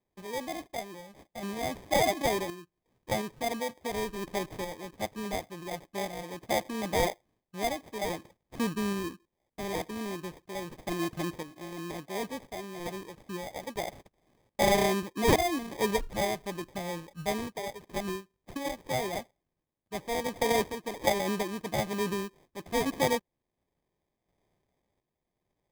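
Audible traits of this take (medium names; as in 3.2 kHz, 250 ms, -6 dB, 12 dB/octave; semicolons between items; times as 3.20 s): aliases and images of a low sample rate 1.4 kHz, jitter 0%; random-step tremolo 2.8 Hz, depth 70%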